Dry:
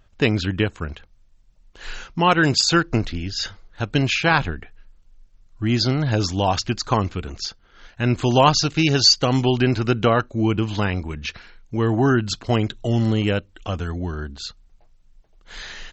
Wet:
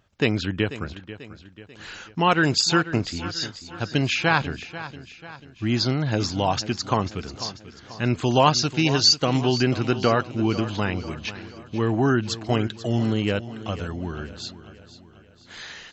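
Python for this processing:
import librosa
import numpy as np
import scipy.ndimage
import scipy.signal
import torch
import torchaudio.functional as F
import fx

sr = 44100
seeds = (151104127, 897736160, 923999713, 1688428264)

y = scipy.signal.sosfilt(scipy.signal.butter(2, 91.0, 'highpass', fs=sr, output='sos'), x)
y = fx.echo_feedback(y, sr, ms=490, feedback_pct=49, wet_db=-14.5)
y = y * 10.0 ** (-2.5 / 20.0)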